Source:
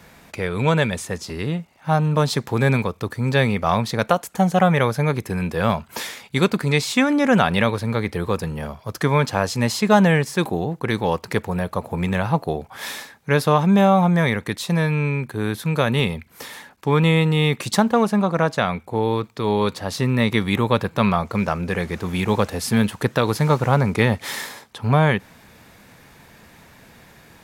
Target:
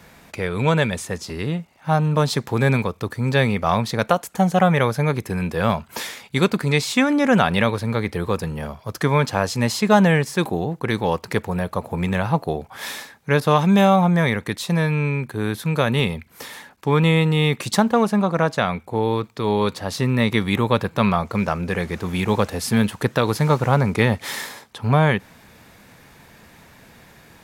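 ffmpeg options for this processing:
-filter_complex "[0:a]asettb=1/sr,asplit=3[a][b][c];[a]atrim=end=13.404[d];[b]atrim=start=13.4:end=13.96,asetpts=PTS-STARTPTS,afade=t=in:d=0.004:c=qsin,afade=t=out:st=0.556:d=0.004:c=qsin,adynamicequalizer=threshold=0.0316:dfrequency=1800:dqfactor=0.7:tfrequency=1800:tqfactor=0.7:attack=5:release=100:ratio=0.375:range=2.5:mode=boostabove:tftype=highshelf[e];[c]atrim=start=13.956[f];[d][e]acrossfade=d=0.004:c1=hsin:c2=qsin[g];[g][f]acrossfade=d=0.004:c1=qsin:c2=hsin"

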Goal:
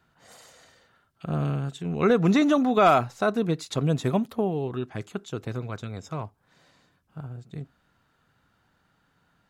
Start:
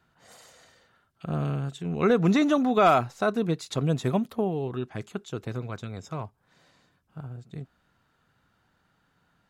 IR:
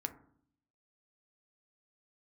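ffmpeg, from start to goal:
-filter_complex "[0:a]asplit=2[a][b];[1:a]atrim=start_sample=2205,atrim=end_sample=3969[c];[b][c]afir=irnorm=-1:irlink=0,volume=-15dB[d];[a][d]amix=inputs=2:normalize=0"

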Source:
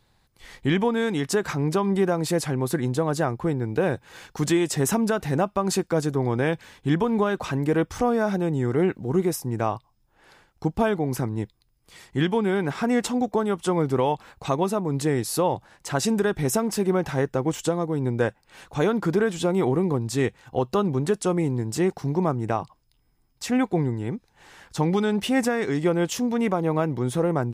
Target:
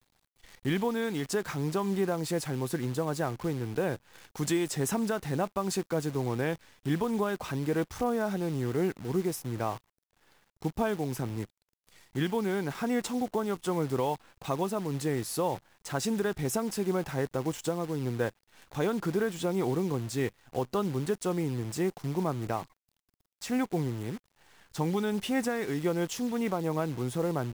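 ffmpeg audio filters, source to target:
-filter_complex "[0:a]asettb=1/sr,asplit=3[a][b][c];[a]atrim=end=4.294[d];[b]atrim=start=4.29:end=4.7,asetpts=PTS-STARTPTS,afade=t=in:d=0.004:c=qsin,afade=t=out:st=0.406:d=0.004:c=qsin,highshelf=f=9k:g=9.5[e];[c]atrim=start=4.696[f];[d][e]acrossfade=d=0.004:c1=hsin:c2=qsin[g];[g][f]acrossfade=d=0.004:c1=qsin:c2=hsin,acrusher=bits=7:dc=4:mix=0:aa=0.000001,volume=-7dB"

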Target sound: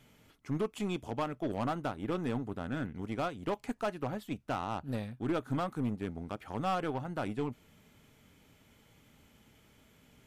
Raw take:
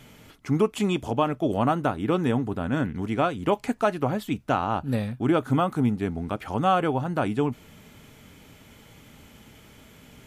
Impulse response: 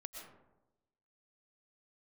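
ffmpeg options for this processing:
-af "aeval=exprs='0.335*(cos(1*acos(clip(val(0)/0.335,-1,1)))-cos(1*PI/2))+0.0668*(cos(3*acos(clip(val(0)/0.335,-1,1)))-cos(3*PI/2))+0.0473*(cos(6*acos(clip(val(0)/0.335,-1,1)))-cos(6*PI/2))+0.0075*(cos(7*acos(clip(val(0)/0.335,-1,1)))-cos(7*PI/2))+0.0266*(cos(8*acos(clip(val(0)/0.335,-1,1)))-cos(8*PI/2))':c=same,asoftclip=type=tanh:threshold=-25.5dB"

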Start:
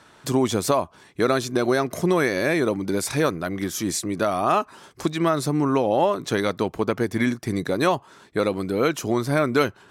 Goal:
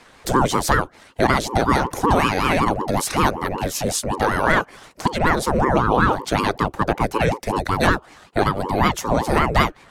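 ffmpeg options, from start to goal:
-af "afreqshift=61,aeval=exprs='val(0)*sin(2*PI*430*n/s+430*0.7/5.3*sin(2*PI*5.3*n/s))':c=same,volume=6dB"

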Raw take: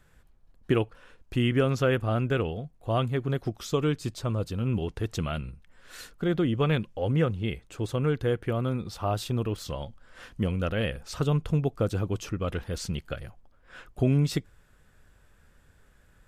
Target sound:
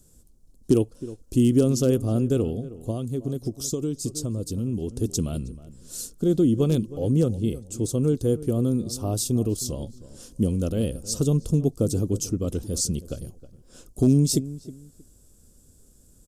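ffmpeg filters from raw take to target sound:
-filter_complex "[0:a]asplit=2[a][b];[b]adelay=316,lowpass=f=1.6k:p=1,volume=-16dB,asplit=2[c][d];[d]adelay=316,lowpass=f=1.6k:p=1,volume=0.24[e];[a][c][e]amix=inputs=3:normalize=0,aeval=exprs='0.188*(abs(mod(val(0)/0.188+3,4)-2)-1)':c=same,equalizer=f=6.9k:w=0.59:g=11,asettb=1/sr,asplit=3[f][g][h];[f]atrim=end=2.904[i];[g]atrim=start=2.9:end=5.02,asetpts=PTS-STARTPTS,afade=t=in:d=0.004:c=qsin,afade=t=out:st=2.116:d=0.004:c=qsin,acompressor=threshold=-28dB:ratio=6[j];[h]atrim=start=5.016[k];[i][j]acrossfade=d=0.004:c1=hsin:c2=qsin[l];[l][k]acrossfade=d=0.004:c1=qsin:c2=hsin,firequalizer=gain_entry='entry(160,0);entry(250,6);entry(830,-12);entry(1200,-15);entry(1800,-25);entry(2900,-15);entry(5200,-2);entry(9400,5)':delay=0.05:min_phase=1,volume=3dB"

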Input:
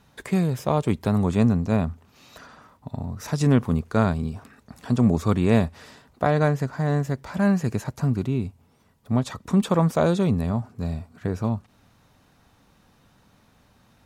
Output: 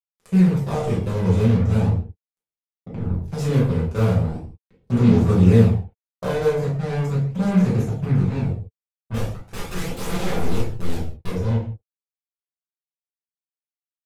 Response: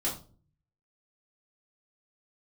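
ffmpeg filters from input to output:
-filter_complex "[0:a]asettb=1/sr,asplit=3[a][b][c];[a]atrim=end=9.144[d];[b]atrim=start=9.14:end=11.3,asetpts=PTS-STARTPTS,afade=t=in:d=0.004:c=qsin,afade=t=out:st=2.156:d=0.004:c=qsin,aeval=exprs='(mod(12.6*val(0)+1,2)-1)/12.6':c=same[e];[c]atrim=start=11.296[f];[d][e]acrossfade=d=0.004:c1=hsin:c2=qsin[g];[g][f]acrossfade=d=0.004:c1=qsin:c2=hsin,lowshelf=f=130:g=11,bandreject=f=50:t=h:w=6,bandreject=f=100:t=h:w=6,bandreject=f=150:t=h:w=6,bandreject=f=200:t=h:w=6,bandreject=f=250:t=h:w=6,bandreject=f=300:t=h:w=6,bandreject=f=350:t=h:w=6,bandreject=f=400:t=h:w=6,bandreject=f=450:t=h:w=6,asplit=2[h][i];[i]adelay=164,lowpass=f=2.2k:p=1,volume=-22.5dB,asplit=2[j][k];[k]adelay=164,lowpass=f=2.2k:p=1,volume=0.44,asplit=2[l][m];[m]adelay=164,lowpass=f=2.2k:p=1,volume=0.44[n];[h][j][l][n]amix=inputs=4:normalize=0,acrusher=bits=3:mix=0:aa=0.5[o];[1:a]atrim=start_sample=2205,afade=t=out:st=0.18:d=0.01,atrim=end_sample=8379,asetrate=28665,aresample=44100[p];[o][p]afir=irnorm=-1:irlink=0,aphaser=in_gain=1:out_gain=1:delay=2:decay=0.3:speed=0.39:type=sinusoidal,equalizer=f=450:w=6.1:g=7.5,volume=-14dB"

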